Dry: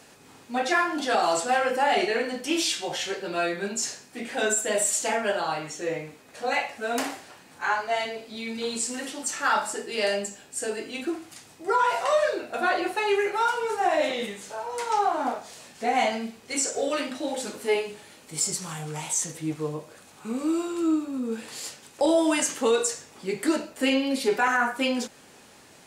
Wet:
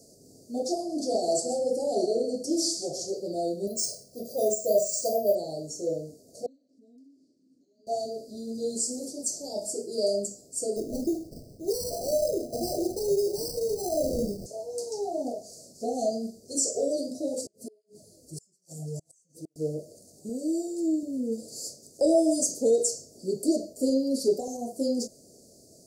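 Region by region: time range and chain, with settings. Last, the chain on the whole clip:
0.76–3.10 s: steep low-pass 12 kHz + delay 132 ms -10.5 dB
3.67–5.35 s: comb 1.7 ms, depth 64% + careless resampling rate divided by 3×, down filtered, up hold
6.46–7.87 s: vowel filter i + compression 5:1, threshold -53 dBFS
10.76–14.46 s: compression 2:1, threshold -27 dBFS + sample-rate reducer 3.4 kHz + bass shelf 290 Hz +10 dB
17.41–19.56 s: bass shelf 62 Hz +10.5 dB + inverted gate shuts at -22 dBFS, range -36 dB + cancelling through-zero flanger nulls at 1.2 Hz, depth 5.3 ms
20.29–21.03 s: high-pass 55 Hz + bass shelf 170 Hz -11.5 dB
whole clip: Chebyshev band-stop 660–4600 Hz, order 5; dynamic bell 1.7 kHz, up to +5 dB, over -47 dBFS, Q 0.77

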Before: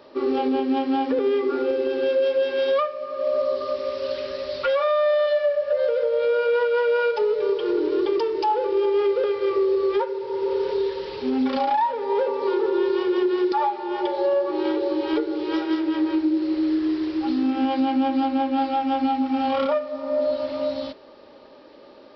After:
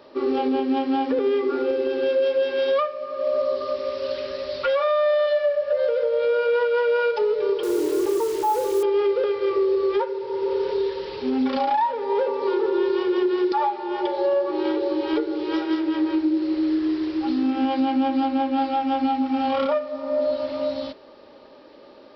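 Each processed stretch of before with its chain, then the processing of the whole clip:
7.63–8.83 s: low-pass 1.4 kHz 24 dB/octave + word length cut 6-bit, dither none
whole clip: none

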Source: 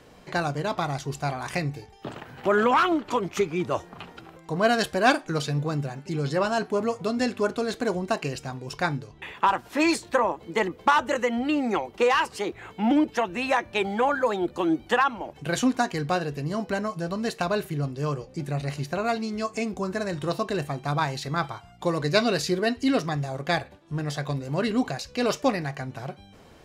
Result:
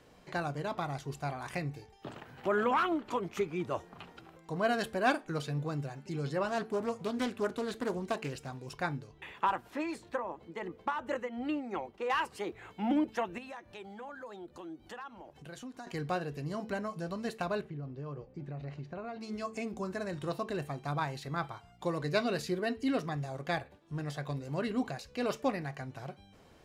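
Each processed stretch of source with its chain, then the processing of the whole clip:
6.48–8.73 s: treble shelf 4.8 kHz +5 dB + loudspeaker Doppler distortion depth 0.23 ms
9.70–12.10 s: treble shelf 3.7 kHz -7.5 dB + tremolo 2.8 Hz, depth 56%
13.38–15.87 s: peaking EQ 2.3 kHz -4 dB 0.27 oct + compression 2.5:1, threshold -41 dBFS
17.61–19.21 s: tape spacing loss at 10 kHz 30 dB + compression, threshold -29 dBFS
whole clip: de-hum 221.7 Hz, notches 2; dynamic bell 5.6 kHz, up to -6 dB, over -45 dBFS, Q 0.96; trim -8 dB

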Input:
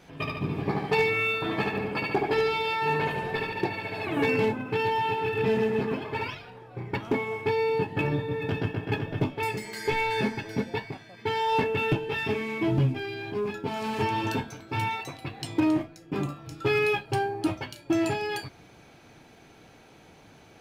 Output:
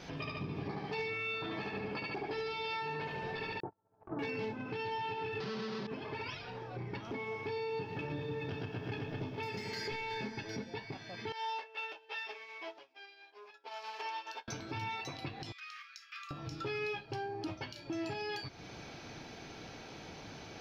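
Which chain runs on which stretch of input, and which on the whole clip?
3.60–4.19 s: Chebyshev low-pass 1.4 kHz, order 5 + gate -31 dBFS, range -39 dB
5.40–5.87 s: square wave that keeps the level + Chebyshev band-pass 110–4600 Hz, order 3 + comb 5.2 ms, depth 94%
7.32–10.26 s: doubling 31 ms -12 dB + bit-crushed delay 111 ms, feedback 80%, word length 9-bit, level -12.5 dB
11.32–14.48 s: high-pass 560 Hz 24 dB/octave + upward expansion 2.5:1, over -45 dBFS
15.52–16.31 s: brick-wall FIR high-pass 1.1 kHz + compression 2.5:1, threshold -55 dBFS + peaking EQ 2.4 kHz +3.5 dB 0.32 oct
whole clip: resonant high shelf 6.9 kHz -9 dB, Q 3; compression 3:1, threshold -44 dBFS; peak limiter -34.5 dBFS; trim +4 dB

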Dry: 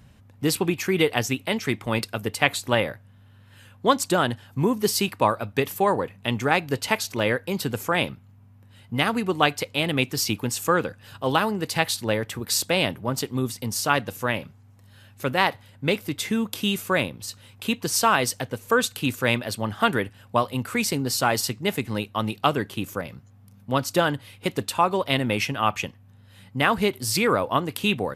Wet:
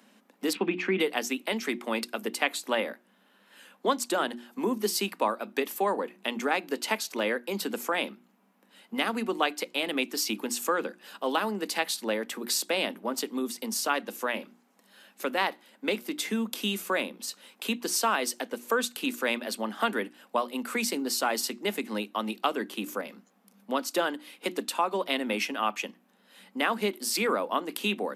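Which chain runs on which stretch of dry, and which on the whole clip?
0.53–1.00 s: resonant low-pass 2.6 kHz, resonance Q 1.5 + peaking EQ 120 Hz +11 dB 1.8 oct
whole clip: steep high-pass 200 Hz 72 dB/octave; hum notches 60/120/180/240/300/360 Hz; compression 1.5:1, threshold -33 dBFS

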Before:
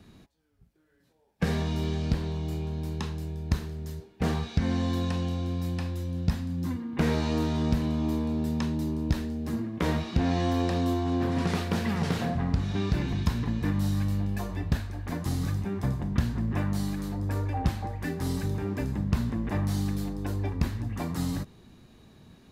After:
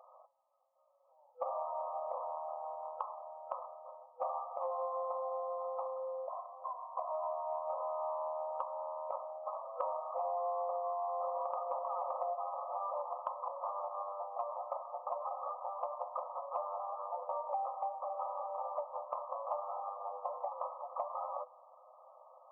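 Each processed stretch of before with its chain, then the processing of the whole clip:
6.27–7.70 s: high-pass 66 Hz + comb 2.9 ms, depth 90% + compression 10:1, threshold -28 dBFS
whole clip: FFT band-pass 500–1300 Hz; compression 6:1, threshold -43 dBFS; trim +8.5 dB

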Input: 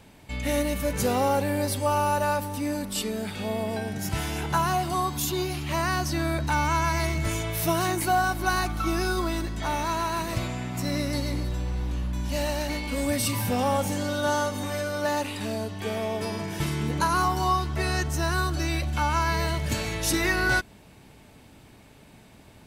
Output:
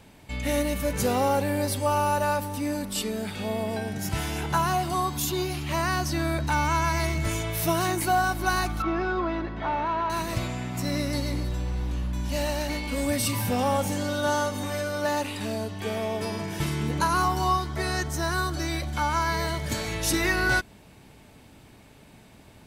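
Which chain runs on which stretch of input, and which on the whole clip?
8.82–10.10 s: distance through air 240 m + overdrive pedal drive 14 dB, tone 1.1 kHz, clips at -16 dBFS
17.57–19.89 s: peaking EQ 64 Hz -4 dB 2.6 oct + band-stop 2.7 kHz, Q 7.6
whole clip: none

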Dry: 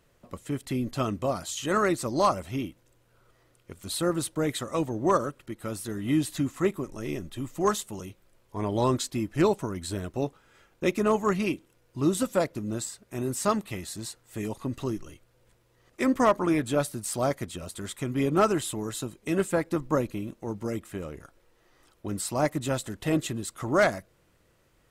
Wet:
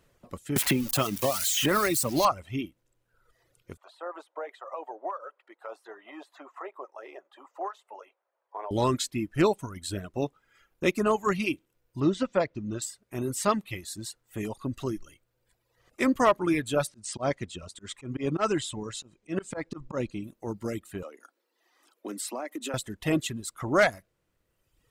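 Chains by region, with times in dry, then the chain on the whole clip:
0.56–2.25 s: zero-crossing glitches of -21.5 dBFS + three bands compressed up and down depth 100%
3.77–8.71 s: high-pass 740 Hz 24 dB/octave + compression, threshold -38 dBFS + FFT filter 110 Hz 0 dB, 400 Hz +14 dB, 770 Hz +9 dB, 10 kHz -27 dB
12.00–12.82 s: low-pass 6 kHz 24 dB/octave + treble shelf 3.3 kHz -6.5 dB + tape noise reduction on one side only encoder only
16.87–20.24 s: low-pass 7.9 kHz 24 dB/octave + slow attack 110 ms
21.03–22.74 s: steep high-pass 230 Hz 48 dB/octave + compression, threshold -30 dBFS
whole clip: reverb removal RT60 1.3 s; dynamic bell 2.6 kHz, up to +4 dB, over -44 dBFS, Q 1

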